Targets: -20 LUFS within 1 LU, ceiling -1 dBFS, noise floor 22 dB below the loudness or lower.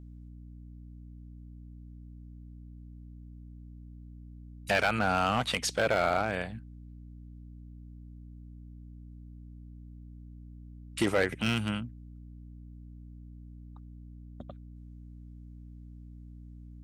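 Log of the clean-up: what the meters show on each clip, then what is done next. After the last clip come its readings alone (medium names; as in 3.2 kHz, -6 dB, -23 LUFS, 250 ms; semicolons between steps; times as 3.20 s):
clipped samples 0.3%; clipping level -19.0 dBFS; hum 60 Hz; highest harmonic 300 Hz; hum level -45 dBFS; loudness -29.5 LUFS; peak level -19.0 dBFS; loudness target -20.0 LUFS
-> clip repair -19 dBFS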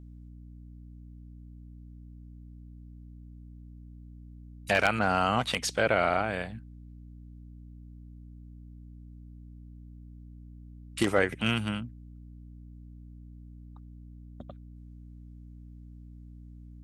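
clipped samples 0.0%; hum 60 Hz; highest harmonic 300 Hz; hum level -44 dBFS
-> hum notches 60/120/180/240/300 Hz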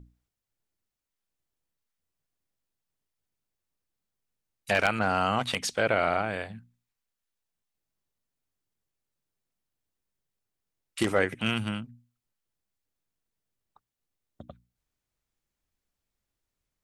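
hum not found; loudness -27.5 LUFS; peak level -10.0 dBFS; loudness target -20.0 LUFS
-> trim +7.5 dB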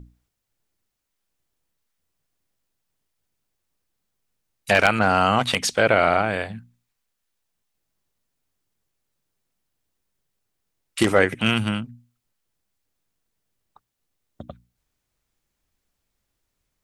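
loudness -20.0 LUFS; peak level -2.5 dBFS; noise floor -79 dBFS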